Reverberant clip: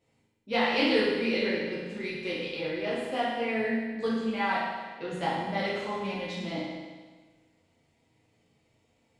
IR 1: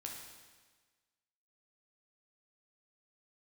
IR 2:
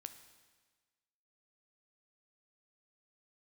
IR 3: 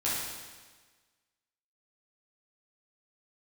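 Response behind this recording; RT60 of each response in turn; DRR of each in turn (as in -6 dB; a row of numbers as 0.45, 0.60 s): 3; 1.4, 1.4, 1.4 s; -0.5, 9.0, -9.0 dB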